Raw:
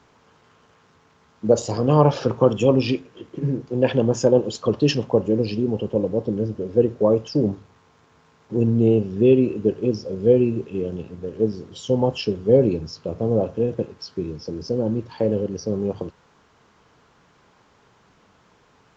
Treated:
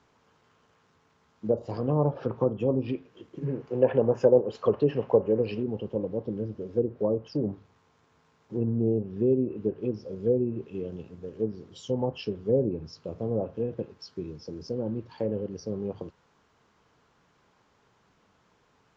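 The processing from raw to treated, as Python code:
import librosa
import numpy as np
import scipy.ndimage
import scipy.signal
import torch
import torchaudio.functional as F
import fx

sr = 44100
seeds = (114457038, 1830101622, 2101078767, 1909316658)

y = fx.env_lowpass_down(x, sr, base_hz=740.0, full_db=-12.5)
y = fx.spec_box(y, sr, start_s=3.46, length_s=2.16, low_hz=380.0, high_hz=3100.0, gain_db=7)
y = y * librosa.db_to_amplitude(-8.5)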